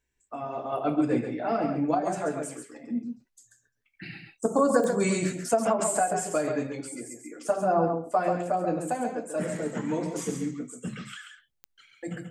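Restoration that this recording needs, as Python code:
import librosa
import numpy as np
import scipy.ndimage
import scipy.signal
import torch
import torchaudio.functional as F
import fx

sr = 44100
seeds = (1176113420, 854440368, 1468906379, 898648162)

y = fx.fix_declick_ar(x, sr, threshold=10.0)
y = fx.fix_echo_inverse(y, sr, delay_ms=136, level_db=-6.5)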